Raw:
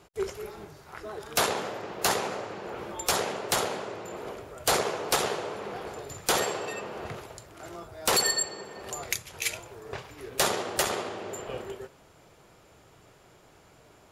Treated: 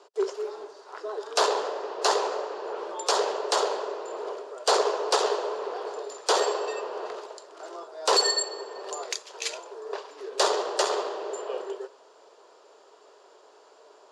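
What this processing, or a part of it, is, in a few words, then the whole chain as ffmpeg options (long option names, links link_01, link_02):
phone speaker on a table: -af "highpass=frequency=390:width=0.5412,highpass=frequency=390:width=1.3066,equalizer=frequency=420:width_type=q:width=4:gain=9,equalizer=frequency=600:width_type=q:width=4:gain=4,equalizer=frequency=1000:width_type=q:width=4:gain=7,equalizer=frequency=2200:width_type=q:width=4:gain=-9,equalizer=frequency=4600:width_type=q:width=4:gain=5,lowpass=frequency=7700:width=0.5412,lowpass=frequency=7700:width=1.3066"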